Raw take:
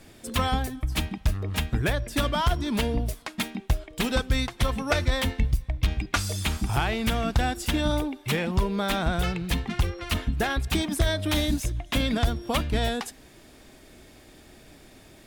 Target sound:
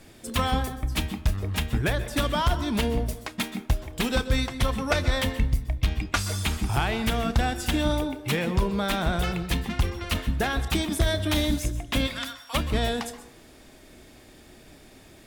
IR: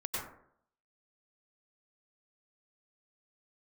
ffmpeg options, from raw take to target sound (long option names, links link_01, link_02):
-filter_complex "[0:a]asplit=3[link_01][link_02][link_03];[link_01]afade=type=out:start_time=12.06:duration=0.02[link_04];[link_02]highpass=frequency=1100:width=0.5412,highpass=frequency=1100:width=1.3066,afade=type=in:start_time=12.06:duration=0.02,afade=type=out:start_time=12.53:duration=0.02[link_05];[link_03]afade=type=in:start_time=12.53:duration=0.02[link_06];[link_04][link_05][link_06]amix=inputs=3:normalize=0,asplit=2[link_07][link_08];[link_08]equalizer=frequency=1400:width_type=o:width=2.2:gain=-5[link_09];[1:a]atrim=start_sample=2205,lowshelf=frequency=130:gain=-11,adelay=30[link_10];[link_09][link_10]afir=irnorm=-1:irlink=0,volume=-11dB[link_11];[link_07][link_11]amix=inputs=2:normalize=0"